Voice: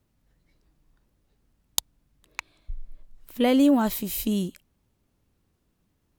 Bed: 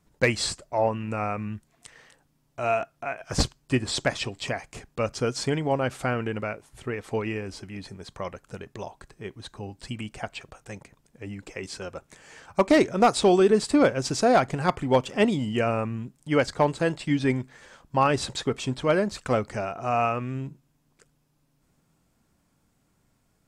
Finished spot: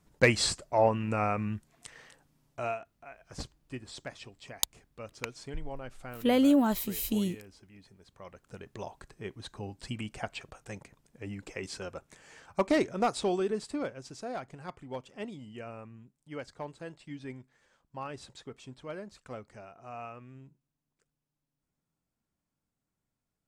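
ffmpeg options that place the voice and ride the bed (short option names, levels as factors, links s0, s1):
-filter_complex "[0:a]adelay=2850,volume=0.631[s0];[1:a]volume=4.73,afade=t=out:st=2.46:d=0.33:silence=0.149624,afade=t=in:st=8.18:d=0.75:silence=0.199526,afade=t=out:st=11.57:d=2.48:silence=0.16788[s1];[s0][s1]amix=inputs=2:normalize=0"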